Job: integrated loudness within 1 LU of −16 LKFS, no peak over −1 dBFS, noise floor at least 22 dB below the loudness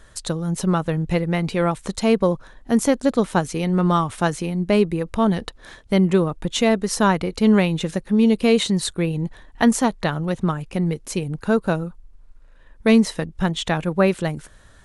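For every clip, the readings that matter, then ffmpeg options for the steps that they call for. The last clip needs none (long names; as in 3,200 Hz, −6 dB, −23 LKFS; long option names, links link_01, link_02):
integrated loudness −21.0 LKFS; sample peak −3.5 dBFS; target loudness −16.0 LKFS
→ -af "volume=5dB,alimiter=limit=-1dB:level=0:latency=1"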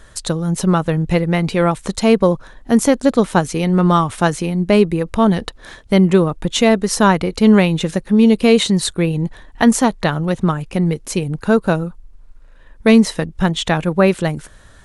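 integrated loudness −16.0 LKFS; sample peak −1.0 dBFS; background noise floor −44 dBFS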